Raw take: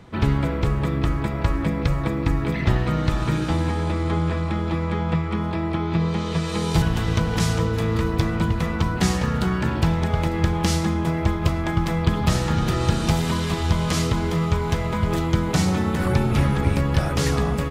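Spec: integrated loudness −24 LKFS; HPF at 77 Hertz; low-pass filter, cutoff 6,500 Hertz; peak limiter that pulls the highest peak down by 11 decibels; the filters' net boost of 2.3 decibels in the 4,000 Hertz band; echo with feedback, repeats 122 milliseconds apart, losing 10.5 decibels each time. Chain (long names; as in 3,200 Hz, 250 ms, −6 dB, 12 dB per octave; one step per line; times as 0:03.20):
high-pass filter 77 Hz
low-pass filter 6,500 Hz
parametric band 4,000 Hz +3.5 dB
brickwall limiter −16.5 dBFS
repeating echo 122 ms, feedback 30%, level −10.5 dB
level +1 dB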